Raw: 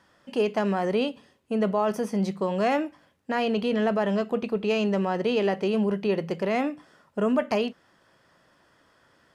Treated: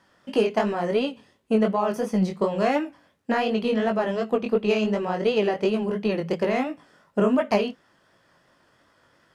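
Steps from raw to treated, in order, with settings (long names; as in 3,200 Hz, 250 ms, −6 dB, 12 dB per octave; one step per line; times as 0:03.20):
transient designer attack +7 dB, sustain 0 dB
chorus effect 2.8 Hz, delay 18 ms, depth 5.7 ms
level +3 dB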